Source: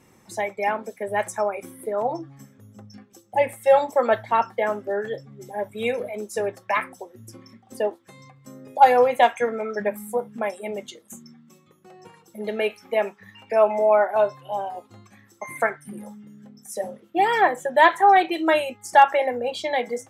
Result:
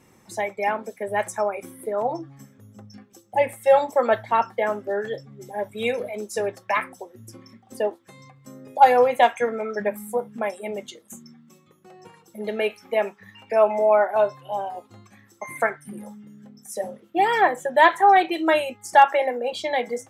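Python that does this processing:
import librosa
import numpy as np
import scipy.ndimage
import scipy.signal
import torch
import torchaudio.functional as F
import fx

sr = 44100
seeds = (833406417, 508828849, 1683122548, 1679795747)

y = fx.dynamic_eq(x, sr, hz=4800.0, q=1.0, threshold_db=-50.0, ratio=4.0, max_db=4, at=(4.78, 6.73))
y = fx.highpass(y, sr, hz=230.0, slope=24, at=(19.07, 19.53))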